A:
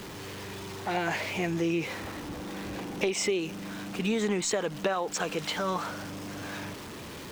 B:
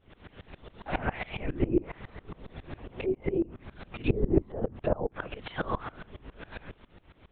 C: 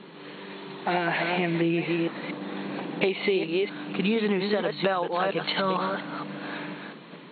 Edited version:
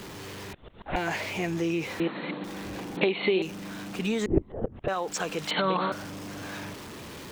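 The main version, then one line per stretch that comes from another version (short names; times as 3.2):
A
0.53–0.96 from B
2–2.44 from C
2.97–3.42 from C
4.26–4.88 from B
5.51–5.92 from C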